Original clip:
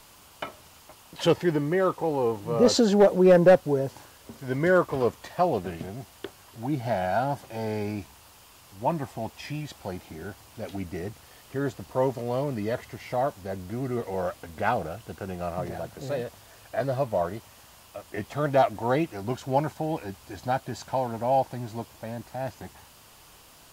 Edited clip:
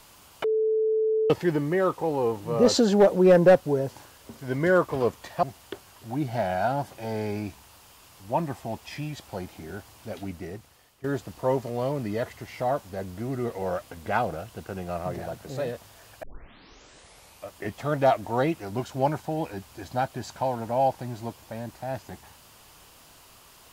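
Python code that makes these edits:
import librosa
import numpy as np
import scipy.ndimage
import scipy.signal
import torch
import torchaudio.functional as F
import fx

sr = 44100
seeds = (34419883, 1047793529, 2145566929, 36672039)

y = fx.edit(x, sr, fx.bleep(start_s=0.44, length_s=0.86, hz=438.0, db=-20.5),
    fx.cut(start_s=5.43, length_s=0.52),
    fx.fade_out_to(start_s=10.62, length_s=0.94, floor_db=-14.0),
    fx.tape_start(start_s=16.75, length_s=1.25), tone=tone)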